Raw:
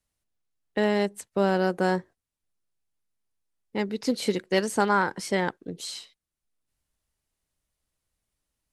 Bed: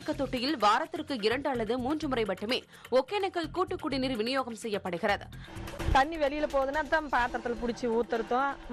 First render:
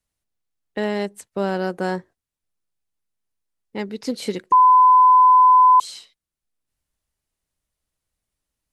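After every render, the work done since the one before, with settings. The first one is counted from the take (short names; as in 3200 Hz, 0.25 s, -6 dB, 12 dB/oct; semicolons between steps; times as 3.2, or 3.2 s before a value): 4.52–5.8 bleep 1010 Hz -8.5 dBFS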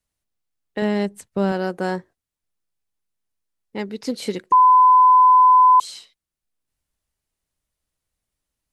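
0.82–1.52 tone controls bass +8 dB, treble -1 dB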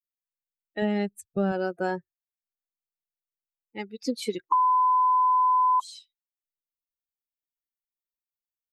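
per-bin expansion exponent 2; compressor 5:1, threshold -21 dBFS, peak gain reduction 9 dB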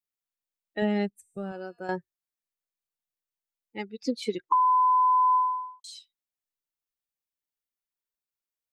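1.1–1.89 resonator 240 Hz, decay 0.85 s, mix 70%; 3.85–4.68 air absorption 55 m; 5.35–5.84 fade out quadratic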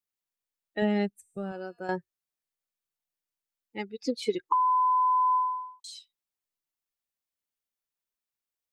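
3.92–5.88 comb 2.4 ms, depth 33%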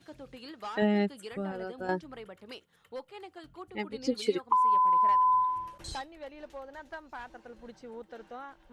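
add bed -15.5 dB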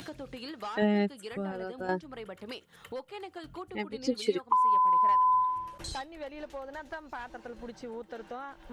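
upward compressor, threshold -34 dBFS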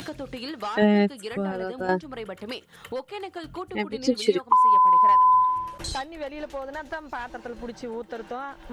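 gain +7 dB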